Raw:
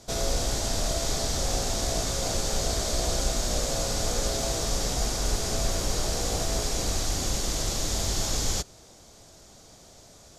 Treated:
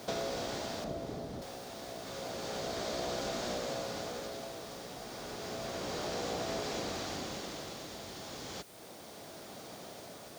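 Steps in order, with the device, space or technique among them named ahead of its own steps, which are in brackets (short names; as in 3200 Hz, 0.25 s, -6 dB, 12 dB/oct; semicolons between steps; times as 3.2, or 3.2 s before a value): medium wave at night (BPF 180–3500 Hz; compressor 5:1, threshold -42 dBFS, peak gain reduction 13 dB; tremolo 0.31 Hz, depth 65%; whine 9000 Hz -72 dBFS; white noise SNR 18 dB); 0.84–1.42 tilt shelf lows +8.5 dB, about 700 Hz; gain +7.5 dB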